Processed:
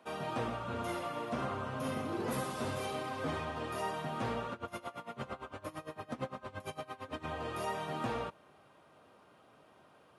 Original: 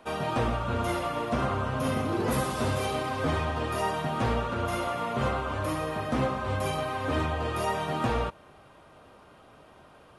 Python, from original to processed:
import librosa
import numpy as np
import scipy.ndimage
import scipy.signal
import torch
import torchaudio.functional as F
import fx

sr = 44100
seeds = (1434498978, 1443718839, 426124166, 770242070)

y = scipy.signal.sosfilt(scipy.signal.butter(2, 120.0, 'highpass', fs=sr, output='sos'), x)
y = fx.tremolo_db(y, sr, hz=8.8, depth_db=21, at=(4.53, 7.27))
y = y * librosa.db_to_amplitude(-8.0)